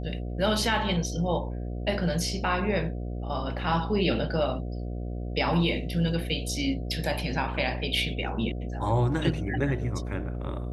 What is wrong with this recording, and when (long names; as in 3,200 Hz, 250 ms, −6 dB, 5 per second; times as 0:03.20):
mains buzz 60 Hz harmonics 12 −33 dBFS